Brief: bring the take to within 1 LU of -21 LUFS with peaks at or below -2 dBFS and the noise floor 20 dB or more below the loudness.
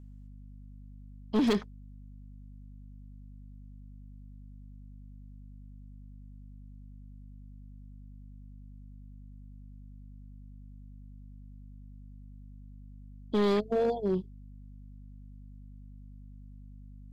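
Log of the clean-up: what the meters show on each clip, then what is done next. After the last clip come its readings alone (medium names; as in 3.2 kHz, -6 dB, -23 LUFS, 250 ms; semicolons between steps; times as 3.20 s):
clipped samples 0.6%; clipping level -21.5 dBFS; hum 50 Hz; highest harmonic 250 Hz; hum level -46 dBFS; loudness -29.5 LUFS; peak level -21.5 dBFS; loudness target -21.0 LUFS
-> clip repair -21.5 dBFS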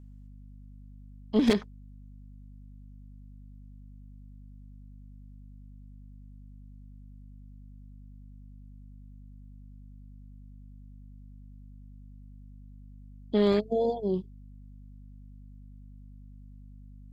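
clipped samples 0.0%; hum 50 Hz; highest harmonic 250 Hz; hum level -46 dBFS
-> de-hum 50 Hz, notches 5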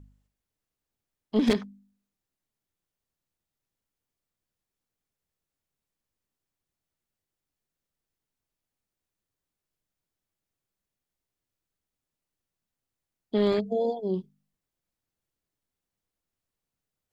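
hum not found; loudness -27.5 LUFS; peak level -11.5 dBFS; loudness target -21.0 LUFS
-> trim +6.5 dB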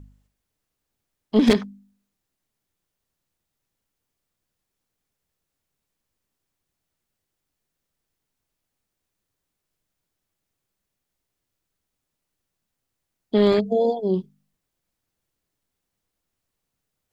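loudness -21.0 LUFS; peak level -5.0 dBFS; noise floor -82 dBFS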